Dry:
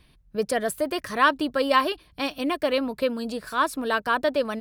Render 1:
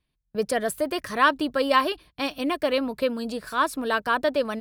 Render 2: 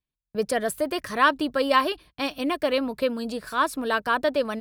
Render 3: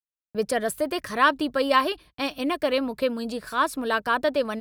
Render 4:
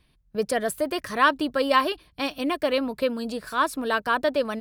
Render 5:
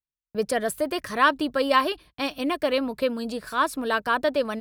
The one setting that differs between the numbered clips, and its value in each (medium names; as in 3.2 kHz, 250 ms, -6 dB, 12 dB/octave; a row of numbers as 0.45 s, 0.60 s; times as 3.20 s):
gate, range: -20 dB, -33 dB, -59 dB, -6 dB, -45 dB